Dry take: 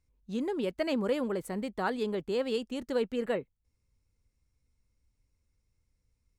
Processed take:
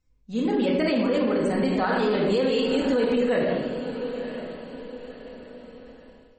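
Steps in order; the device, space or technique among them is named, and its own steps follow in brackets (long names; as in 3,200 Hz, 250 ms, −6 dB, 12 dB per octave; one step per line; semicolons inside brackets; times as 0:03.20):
0:01.56–0:02.77: dynamic equaliser 240 Hz, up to −3 dB, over −46 dBFS, Q 3.2
feedback delay with all-pass diffusion 1,026 ms, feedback 40%, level −16 dB
rectangular room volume 640 cubic metres, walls mixed, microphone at 2 metres
low-bitrate web radio (automatic gain control gain up to 10.5 dB; brickwall limiter −14.5 dBFS, peak gain reduction 11.5 dB; MP3 32 kbit/s 44,100 Hz)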